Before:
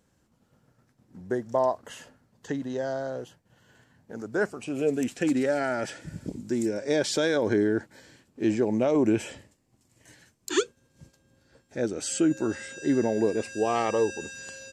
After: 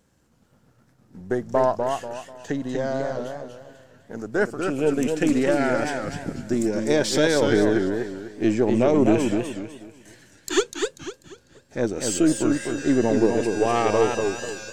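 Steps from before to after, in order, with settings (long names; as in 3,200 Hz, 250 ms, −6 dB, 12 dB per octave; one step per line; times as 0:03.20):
gain on one half-wave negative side −3 dB
feedback echo with a swinging delay time 246 ms, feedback 34%, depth 163 cents, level −5 dB
level +5 dB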